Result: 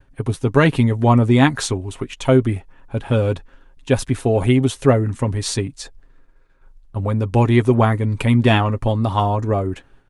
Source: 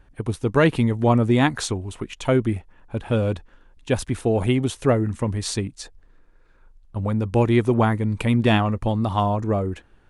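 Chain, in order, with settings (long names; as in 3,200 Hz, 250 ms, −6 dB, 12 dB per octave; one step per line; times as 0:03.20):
downward expander −49 dBFS
comb filter 7.4 ms, depth 43%
level +3 dB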